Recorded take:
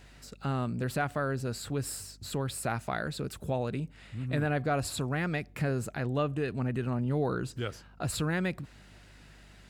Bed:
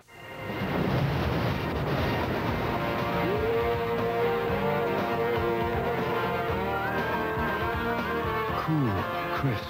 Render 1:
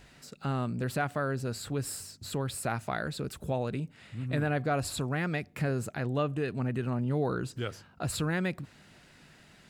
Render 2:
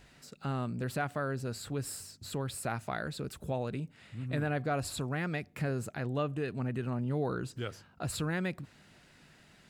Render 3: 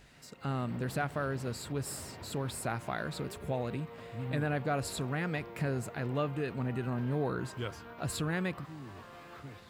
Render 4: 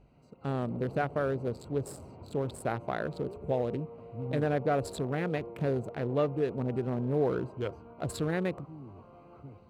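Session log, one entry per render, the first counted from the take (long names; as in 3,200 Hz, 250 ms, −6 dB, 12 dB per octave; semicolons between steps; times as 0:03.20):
hum removal 50 Hz, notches 2
level −3 dB
mix in bed −20.5 dB
adaptive Wiener filter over 25 samples; dynamic equaliser 470 Hz, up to +8 dB, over −49 dBFS, Q 1.1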